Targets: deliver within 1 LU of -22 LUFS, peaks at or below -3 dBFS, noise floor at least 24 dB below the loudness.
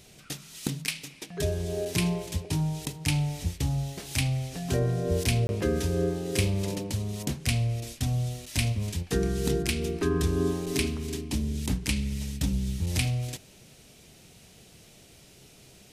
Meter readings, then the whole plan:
dropouts 1; longest dropout 21 ms; loudness -29.5 LUFS; peak -11.5 dBFS; loudness target -22.0 LUFS
-> interpolate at 5.47, 21 ms; gain +7.5 dB

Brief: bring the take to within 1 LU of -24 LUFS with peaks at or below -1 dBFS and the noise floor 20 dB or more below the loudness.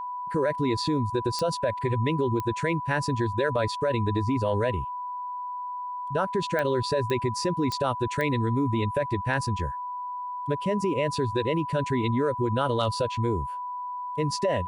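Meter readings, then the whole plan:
clicks 6; steady tone 990 Hz; tone level -31 dBFS; loudness -27.5 LUFS; peak -12.0 dBFS; loudness target -24.0 LUFS
-> de-click; notch 990 Hz, Q 30; gain +3.5 dB

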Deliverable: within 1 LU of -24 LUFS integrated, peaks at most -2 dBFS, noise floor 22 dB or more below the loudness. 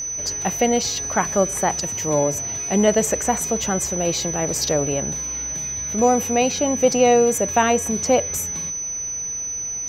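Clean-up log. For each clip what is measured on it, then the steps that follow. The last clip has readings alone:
ticks 22/s; steady tone 6000 Hz; tone level -25 dBFS; loudness -20.0 LUFS; peak -4.0 dBFS; loudness target -24.0 LUFS
-> de-click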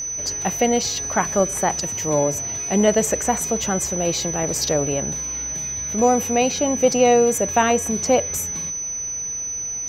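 ticks 0.20/s; steady tone 6000 Hz; tone level -25 dBFS
-> notch 6000 Hz, Q 30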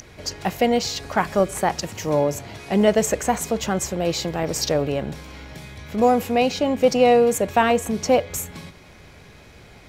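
steady tone none; loudness -21.0 LUFS; peak -5.0 dBFS; loudness target -24.0 LUFS
-> gain -3 dB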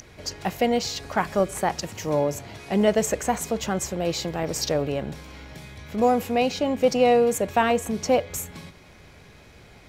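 loudness -24.0 LUFS; peak -8.0 dBFS; noise floor -50 dBFS

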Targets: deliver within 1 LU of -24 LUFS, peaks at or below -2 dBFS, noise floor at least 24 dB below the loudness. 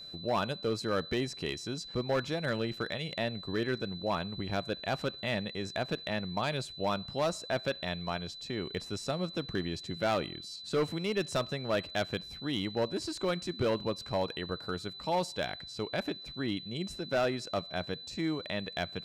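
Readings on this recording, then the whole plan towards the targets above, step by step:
clipped 1.2%; flat tops at -23.5 dBFS; steady tone 4000 Hz; tone level -44 dBFS; loudness -34.0 LUFS; peak -23.5 dBFS; loudness target -24.0 LUFS
-> clip repair -23.5 dBFS; notch 4000 Hz, Q 30; gain +10 dB

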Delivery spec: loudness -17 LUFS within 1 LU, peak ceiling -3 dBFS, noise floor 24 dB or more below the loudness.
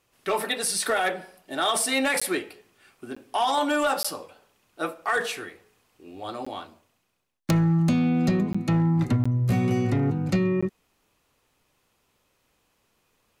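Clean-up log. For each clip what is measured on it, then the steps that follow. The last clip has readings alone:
clipped 0.9%; flat tops at -16.5 dBFS; dropouts 7; longest dropout 15 ms; loudness -25.0 LUFS; peak -16.5 dBFS; loudness target -17.0 LUFS
-> clip repair -16.5 dBFS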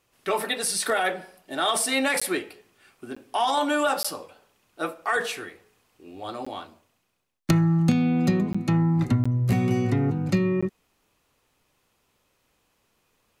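clipped 0.0%; dropouts 7; longest dropout 15 ms
-> interpolate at 2.2/3.15/4.03/6.45/8.53/9.24/10.61, 15 ms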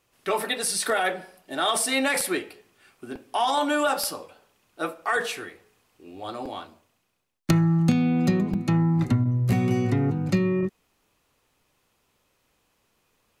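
dropouts 0; loudness -24.5 LUFS; peak -7.5 dBFS; loudness target -17.0 LUFS
-> gain +7.5 dB; limiter -3 dBFS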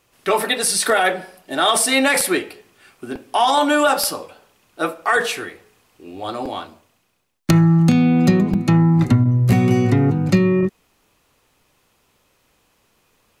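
loudness -17.0 LUFS; peak -3.0 dBFS; noise floor -63 dBFS

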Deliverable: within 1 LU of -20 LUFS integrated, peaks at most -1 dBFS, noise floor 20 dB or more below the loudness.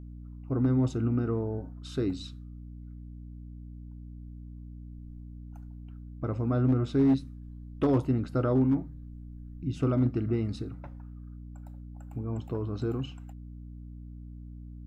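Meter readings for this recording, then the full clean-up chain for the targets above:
clipped 0.3%; flat tops at -18.0 dBFS; hum 60 Hz; harmonics up to 300 Hz; hum level -42 dBFS; loudness -29.5 LUFS; peak -18.0 dBFS; loudness target -20.0 LUFS
-> clip repair -18 dBFS; notches 60/120/180/240/300 Hz; gain +9.5 dB

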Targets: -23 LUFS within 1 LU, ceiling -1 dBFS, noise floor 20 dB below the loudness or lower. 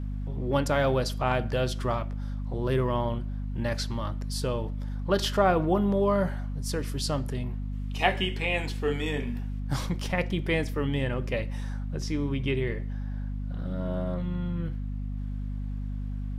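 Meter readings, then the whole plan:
hum 50 Hz; harmonics up to 250 Hz; hum level -30 dBFS; loudness -29.5 LUFS; peak -9.0 dBFS; loudness target -23.0 LUFS
-> de-hum 50 Hz, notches 5; gain +6.5 dB

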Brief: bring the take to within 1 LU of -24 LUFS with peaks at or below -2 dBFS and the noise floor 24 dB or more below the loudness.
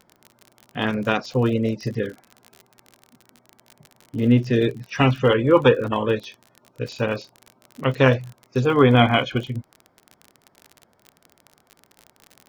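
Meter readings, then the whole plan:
ticks 40/s; loudness -20.5 LUFS; peak -2.0 dBFS; loudness target -24.0 LUFS
-> de-click; gain -3.5 dB

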